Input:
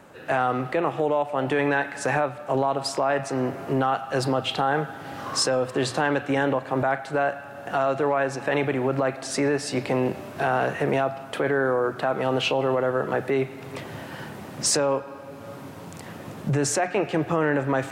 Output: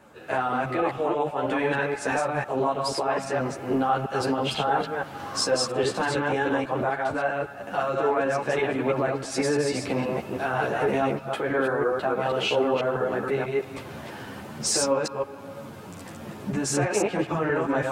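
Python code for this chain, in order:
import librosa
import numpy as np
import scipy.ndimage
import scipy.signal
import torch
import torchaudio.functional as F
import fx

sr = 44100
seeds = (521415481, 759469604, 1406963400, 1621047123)

y = fx.reverse_delay(x, sr, ms=162, wet_db=-1.5)
y = fx.notch(y, sr, hz=1900.0, q=20.0)
y = fx.ensemble(y, sr)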